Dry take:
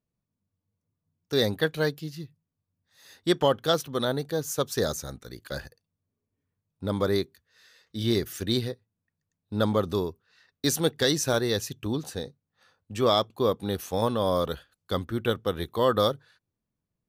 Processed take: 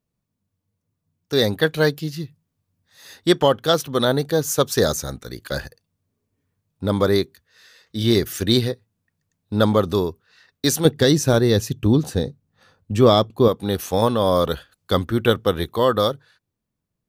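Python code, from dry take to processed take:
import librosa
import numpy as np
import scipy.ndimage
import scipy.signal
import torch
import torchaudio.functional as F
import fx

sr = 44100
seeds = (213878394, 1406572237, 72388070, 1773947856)

y = fx.low_shelf(x, sr, hz=440.0, db=10.5, at=(10.85, 13.48))
y = fx.rider(y, sr, range_db=3, speed_s=0.5)
y = y * librosa.db_to_amplitude(6.0)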